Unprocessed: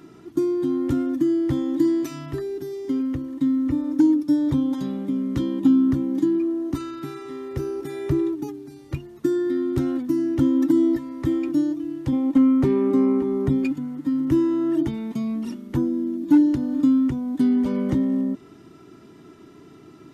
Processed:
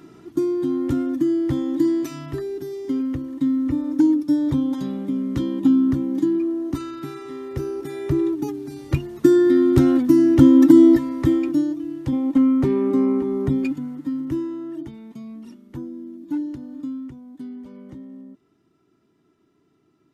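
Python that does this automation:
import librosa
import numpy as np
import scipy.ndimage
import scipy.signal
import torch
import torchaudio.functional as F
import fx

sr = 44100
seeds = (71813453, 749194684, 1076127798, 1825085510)

y = fx.gain(x, sr, db=fx.line((8.1, 0.5), (8.79, 8.0), (11.02, 8.0), (11.67, 0.0), (13.87, 0.0), (14.74, -10.5), (16.56, -10.5), (17.71, -17.5)))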